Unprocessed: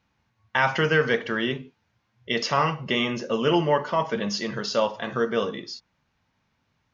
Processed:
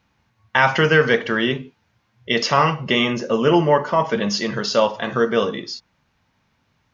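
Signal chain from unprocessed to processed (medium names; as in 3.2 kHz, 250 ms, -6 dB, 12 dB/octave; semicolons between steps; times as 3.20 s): 3.12–4.04 s: dynamic bell 3.4 kHz, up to -6 dB, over -45 dBFS, Q 1.2; trim +6 dB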